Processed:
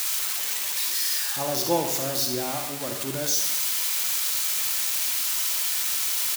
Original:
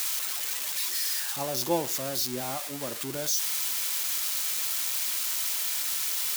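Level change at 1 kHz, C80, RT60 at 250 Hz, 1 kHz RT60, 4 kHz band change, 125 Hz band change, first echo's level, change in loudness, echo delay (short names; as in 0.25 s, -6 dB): +4.0 dB, 8.0 dB, 0.90 s, 0.95 s, +4.0 dB, +4.5 dB, -10.0 dB, +4.0 dB, 75 ms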